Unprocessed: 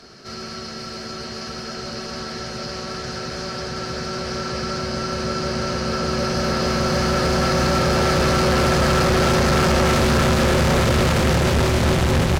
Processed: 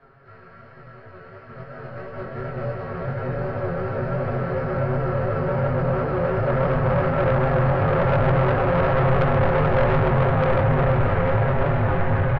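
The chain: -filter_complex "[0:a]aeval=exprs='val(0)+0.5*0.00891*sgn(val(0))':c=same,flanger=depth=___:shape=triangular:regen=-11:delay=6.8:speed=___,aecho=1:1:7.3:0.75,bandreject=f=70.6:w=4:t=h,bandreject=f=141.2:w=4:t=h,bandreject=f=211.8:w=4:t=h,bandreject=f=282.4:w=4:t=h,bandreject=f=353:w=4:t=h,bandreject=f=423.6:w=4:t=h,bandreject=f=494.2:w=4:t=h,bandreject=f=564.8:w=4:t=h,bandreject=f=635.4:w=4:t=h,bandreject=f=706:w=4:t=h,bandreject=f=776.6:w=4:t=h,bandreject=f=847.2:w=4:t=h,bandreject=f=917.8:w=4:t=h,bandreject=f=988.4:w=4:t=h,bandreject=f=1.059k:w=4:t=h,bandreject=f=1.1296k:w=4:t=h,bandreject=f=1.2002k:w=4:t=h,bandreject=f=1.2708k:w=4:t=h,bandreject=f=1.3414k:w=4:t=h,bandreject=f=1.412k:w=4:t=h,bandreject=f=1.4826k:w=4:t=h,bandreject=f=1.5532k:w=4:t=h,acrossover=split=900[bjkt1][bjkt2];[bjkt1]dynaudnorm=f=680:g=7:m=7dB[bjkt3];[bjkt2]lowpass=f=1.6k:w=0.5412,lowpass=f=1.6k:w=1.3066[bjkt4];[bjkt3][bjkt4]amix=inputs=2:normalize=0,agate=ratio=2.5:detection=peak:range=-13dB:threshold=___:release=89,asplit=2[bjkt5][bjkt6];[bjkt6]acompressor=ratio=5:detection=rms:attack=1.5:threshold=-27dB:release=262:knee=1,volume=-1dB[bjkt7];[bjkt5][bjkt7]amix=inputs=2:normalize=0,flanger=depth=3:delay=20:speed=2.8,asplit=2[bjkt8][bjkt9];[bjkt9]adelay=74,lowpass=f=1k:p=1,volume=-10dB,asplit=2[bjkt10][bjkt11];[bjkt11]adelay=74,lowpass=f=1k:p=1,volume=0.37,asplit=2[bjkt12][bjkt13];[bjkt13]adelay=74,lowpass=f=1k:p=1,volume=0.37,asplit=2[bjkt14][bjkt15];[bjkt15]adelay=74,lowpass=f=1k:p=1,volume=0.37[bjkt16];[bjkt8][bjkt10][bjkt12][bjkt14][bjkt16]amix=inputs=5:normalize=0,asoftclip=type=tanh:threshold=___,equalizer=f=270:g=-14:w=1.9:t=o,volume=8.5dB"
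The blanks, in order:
5, 1.2, -25dB, -16.5dB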